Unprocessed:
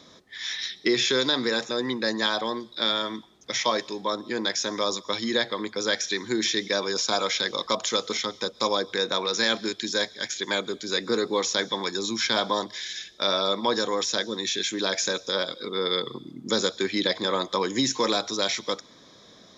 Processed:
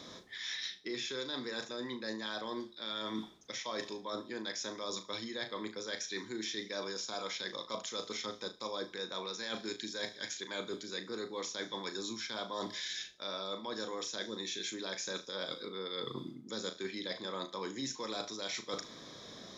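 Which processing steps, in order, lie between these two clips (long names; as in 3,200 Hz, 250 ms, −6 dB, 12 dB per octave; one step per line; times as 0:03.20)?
reversed playback
downward compressor 10 to 1, threshold −38 dBFS, peak gain reduction 19.5 dB
reversed playback
flutter between parallel walls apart 6.3 metres, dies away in 0.24 s
level +1 dB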